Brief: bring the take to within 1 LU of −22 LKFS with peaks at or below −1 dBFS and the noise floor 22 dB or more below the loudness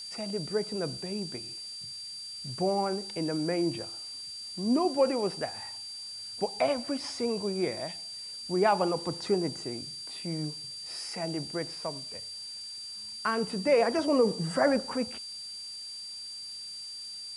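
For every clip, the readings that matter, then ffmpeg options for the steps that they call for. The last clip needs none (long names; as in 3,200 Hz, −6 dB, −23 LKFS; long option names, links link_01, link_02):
interfering tone 4,700 Hz; level of the tone −39 dBFS; background noise floor −42 dBFS; target noise floor −54 dBFS; integrated loudness −31.5 LKFS; sample peak −12.0 dBFS; target loudness −22.0 LKFS
→ -af "bandreject=frequency=4700:width=30"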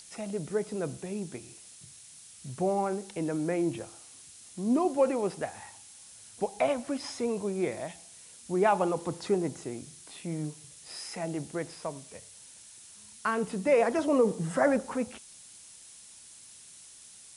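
interfering tone none found; background noise floor −52 dBFS; target noise floor −53 dBFS
→ -af "afftdn=noise_reduction=6:noise_floor=-52"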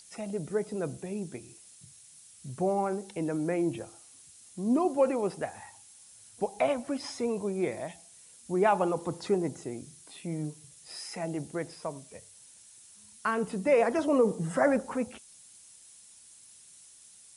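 background noise floor −55 dBFS; integrated loudness −30.5 LKFS; sample peak −12.0 dBFS; target loudness −22.0 LKFS
→ -af "volume=8.5dB"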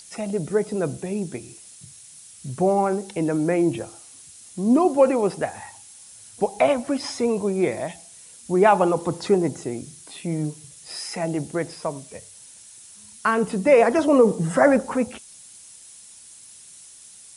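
integrated loudness −22.0 LKFS; sample peak −3.5 dBFS; background noise floor −46 dBFS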